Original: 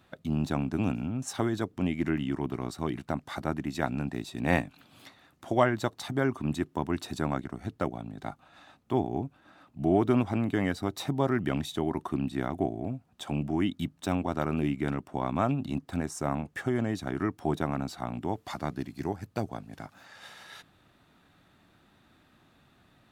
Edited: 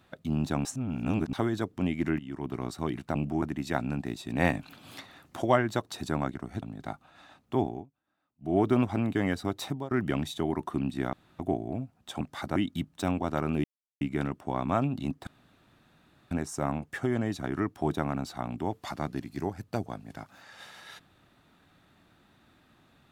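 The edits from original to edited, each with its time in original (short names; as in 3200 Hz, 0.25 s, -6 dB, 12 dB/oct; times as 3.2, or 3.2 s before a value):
0.65–1.33 reverse
2.19–2.59 fade in, from -15.5 dB
3.15–3.5 swap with 13.33–13.6
4.62–5.5 gain +6.5 dB
6.01–7.03 cut
7.72–8 cut
9.03–9.98 dip -23.5 dB, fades 0.21 s
11.01–11.29 fade out, to -21.5 dB
12.51 insert room tone 0.26 s
14.68 insert silence 0.37 s
15.94 insert room tone 1.04 s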